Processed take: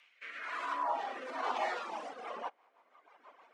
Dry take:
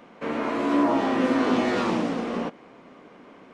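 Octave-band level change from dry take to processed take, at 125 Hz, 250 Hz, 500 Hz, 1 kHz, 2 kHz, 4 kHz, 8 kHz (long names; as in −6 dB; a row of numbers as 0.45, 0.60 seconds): below −35 dB, −31.5 dB, −16.0 dB, −7.0 dB, −9.0 dB, −11.5 dB, can't be measured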